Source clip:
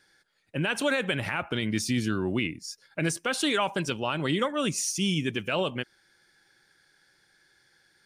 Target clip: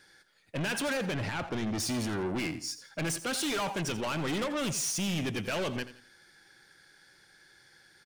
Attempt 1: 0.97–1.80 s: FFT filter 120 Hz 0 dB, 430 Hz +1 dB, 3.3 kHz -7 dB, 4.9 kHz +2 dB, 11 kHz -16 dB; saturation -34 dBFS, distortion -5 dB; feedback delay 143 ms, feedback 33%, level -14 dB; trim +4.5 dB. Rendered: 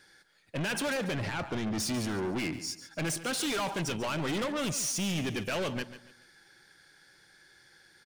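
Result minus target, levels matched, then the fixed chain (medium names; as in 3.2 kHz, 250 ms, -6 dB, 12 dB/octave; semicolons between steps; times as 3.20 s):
echo 58 ms late
0.97–1.80 s: FFT filter 120 Hz 0 dB, 430 Hz +1 dB, 3.3 kHz -7 dB, 4.9 kHz +2 dB, 11 kHz -16 dB; saturation -34 dBFS, distortion -5 dB; feedback delay 85 ms, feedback 33%, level -14 dB; trim +4.5 dB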